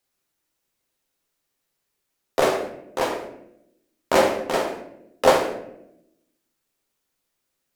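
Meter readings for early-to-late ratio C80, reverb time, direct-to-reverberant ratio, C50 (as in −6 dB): 10.0 dB, 0.80 s, 2.0 dB, 7.5 dB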